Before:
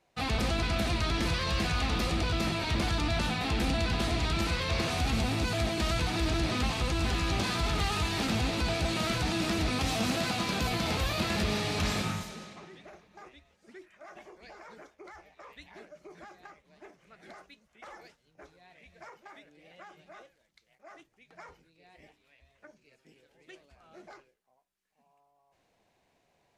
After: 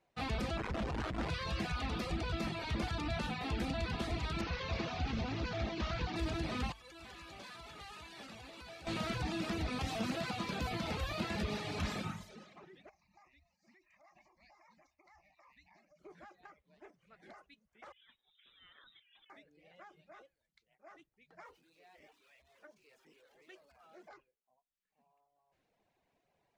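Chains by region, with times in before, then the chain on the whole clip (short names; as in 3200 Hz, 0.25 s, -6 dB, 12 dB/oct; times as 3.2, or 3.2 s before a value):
0.57–1.3 Schmitt trigger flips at -34 dBFS + air absorption 78 m
4.41–6.16 CVSD 32 kbps + Doppler distortion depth 0.16 ms
6.72–8.87 CVSD 64 kbps + low shelf 330 Hz -11 dB + resonator 570 Hz, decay 0.2 s, mix 70%
12.89–15.99 high shelf 2500 Hz +6.5 dB + compressor 3:1, threshold -53 dBFS + fixed phaser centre 2200 Hz, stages 8
17.92–19.3 negative-ratio compressor -57 dBFS + inverted band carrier 3800 Hz
21.45–24.09 zero-crossing step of -56.5 dBFS + tone controls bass -12 dB, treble +1 dB
whole clip: notches 50/100 Hz; reverb removal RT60 0.8 s; high shelf 4600 Hz -8.5 dB; gain -5 dB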